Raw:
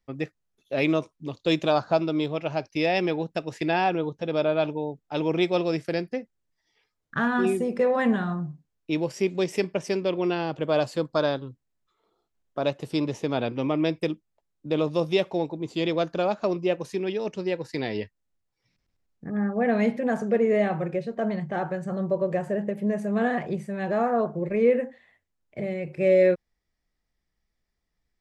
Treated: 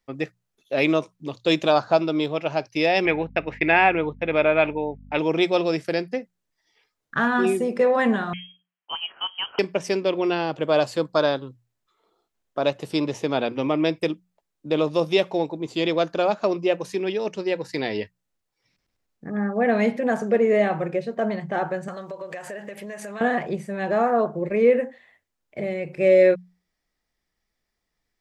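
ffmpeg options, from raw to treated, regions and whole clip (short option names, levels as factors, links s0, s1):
-filter_complex "[0:a]asettb=1/sr,asplit=3[s0][s1][s2];[s0]atrim=end=3.054[s3];[s1]atrim=start=3.05:end=5.19,asetpts=PTS-STARTPTS,afade=t=in:d=0.004:c=qsin,afade=t=out:st=2.136:d=0.004:c=qsin,agate=range=0.0224:threshold=0.0112:ratio=3:release=100:detection=peak,aeval=exprs='val(0)+0.00794*(sin(2*PI*50*n/s)+sin(2*PI*2*50*n/s)/2+sin(2*PI*3*50*n/s)/3+sin(2*PI*4*50*n/s)/4+sin(2*PI*5*50*n/s)/5)':c=same,lowpass=f=2200:t=q:w=4.4[s4];[s2]atrim=start=5.186[s5];[s3][s4]acrossfade=d=0.004:c1=hsin:c2=qsin[s6];[s6][s5]acrossfade=d=0.004:c1=qsin:c2=hsin,asettb=1/sr,asplit=3[s7][s8][s9];[s7]atrim=end=8.334[s10];[s8]atrim=start=8.33:end=9.59,asetpts=PTS-STARTPTS,afade=t=in:d=0.004:c=qsin,afade=t=out:st=1.256:d=0.004:c=qsin,highpass=f=1200:p=1,lowpass=f=2900:t=q:w=0.5098,lowpass=f=2900:t=q:w=0.6013,lowpass=f=2900:t=q:w=0.9,lowpass=f=2900:t=q:w=2.563,afreqshift=-3400[s11];[s9]atrim=start=9.586[s12];[s10][s11]acrossfade=d=0.004:c1=hsin:c2=qsin[s13];[s13][s12]acrossfade=d=0.004:c1=qsin:c2=hsin,asettb=1/sr,asplit=3[s14][s15][s16];[s14]atrim=end=21.884[s17];[s15]atrim=start=21.88:end=23.21,asetpts=PTS-STARTPTS,afade=t=in:d=0.004:c=qsin,afade=t=out:st=1.326:d=0.004:c=qsin,tiltshelf=f=660:g=-10,acompressor=threshold=0.02:ratio=10:attack=3.2:release=140:knee=1:detection=peak[s18];[s16]atrim=start=23.206[s19];[s17][s18]acrossfade=d=0.004:c1=hsin:c2=qsin[s20];[s20][s19]acrossfade=d=0.004:c1=qsin:c2=hsin,lowshelf=f=200:g=-8,bandreject=f=60:t=h:w=6,bandreject=f=120:t=h:w=6,bandreject=f=180:t=h:w=6,volume=1.68"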